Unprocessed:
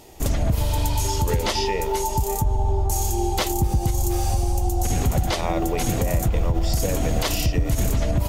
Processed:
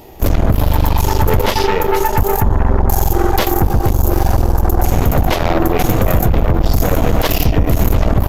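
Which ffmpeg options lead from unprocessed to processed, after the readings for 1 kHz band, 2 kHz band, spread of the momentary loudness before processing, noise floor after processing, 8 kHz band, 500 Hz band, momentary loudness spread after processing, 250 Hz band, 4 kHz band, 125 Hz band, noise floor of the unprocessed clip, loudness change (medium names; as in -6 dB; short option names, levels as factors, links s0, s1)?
+9.0 dB, +9.5 dB, 1 LU, -20 dBFS, -0.5 dB, +9.0 dB, 1 LU, +9.5 dB, +4.0 dB, +7.5 dB, -26 dBFS, +8.0 dB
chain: -af "aemphasis=mode=reproduction:type=75fm,aeval=exprs='0.299*(cos(1*acos(clip(val(0)/0.299,-1,1)))-cos(1*PI/2))+0.0237*(cos(5*acos(clip(val(0)/0.299,-1,1)))-cos(5*PI/2))+0.075*(cos(6*acos(clip(val(0)/0.299,-1,1)))-cos(6*PI/2))':c=same,aresample=32000,aresample=44100,aexciter=amount=15.3:drive=2.5:freq=12000,volume=1.88"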